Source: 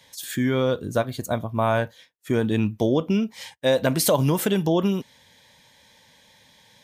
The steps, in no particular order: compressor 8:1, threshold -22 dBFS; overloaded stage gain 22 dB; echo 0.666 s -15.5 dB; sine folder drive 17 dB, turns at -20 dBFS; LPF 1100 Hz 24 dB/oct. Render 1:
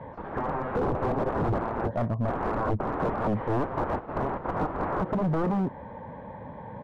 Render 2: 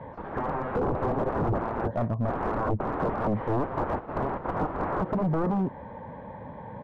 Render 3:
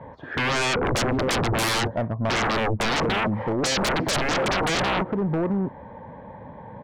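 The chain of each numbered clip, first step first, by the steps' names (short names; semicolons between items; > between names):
echo > sine folder > LPF > overloaded stage > compressor; echo > sine folder > LPF > compressor > overloaded stage; LPF > compressor > overloaded stage > echo > sine folder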